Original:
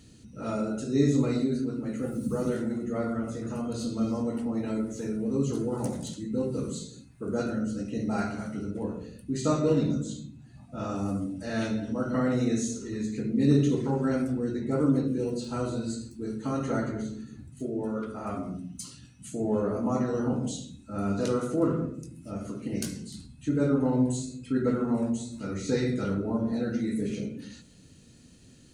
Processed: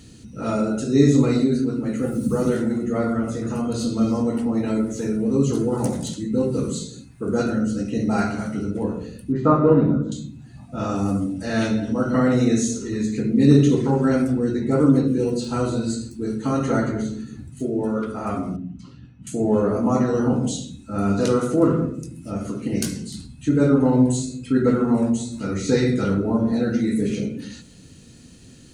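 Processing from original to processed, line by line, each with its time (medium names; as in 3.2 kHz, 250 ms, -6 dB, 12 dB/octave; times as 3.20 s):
9.32–10.12 s: resonant low-pass 1.2 kHz, resonance Q 1.9
18.56–19.27 s: tape spacing loss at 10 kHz 40 dB
whole clip: band-stop 600 Hz, Q 19; trim +8 dB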